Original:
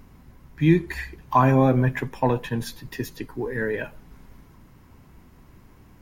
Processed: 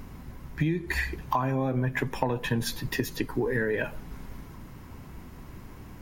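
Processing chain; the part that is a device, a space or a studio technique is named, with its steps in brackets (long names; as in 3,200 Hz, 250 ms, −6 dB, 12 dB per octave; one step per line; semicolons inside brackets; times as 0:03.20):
serial compression, leveller first (downward compressor 2.5 to 1, threshold −24 dBFS, peak gain reduction 8.5 dB; downward compressor 6 to 1, threshold −30 dBFS, peak gain reduction 10.5 dB)
level +6.5 dB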